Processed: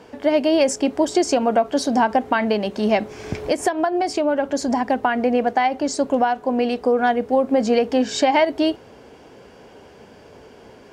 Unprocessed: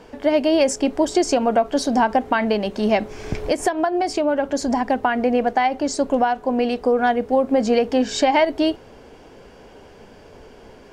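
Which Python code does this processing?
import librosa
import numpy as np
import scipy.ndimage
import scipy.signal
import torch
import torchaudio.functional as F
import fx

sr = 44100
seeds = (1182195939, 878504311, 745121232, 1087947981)

y = scipy.signal.sosfilt(scipy.signal.butter(2, 76.0, 'highpass', fs=sr, output='sos'), x)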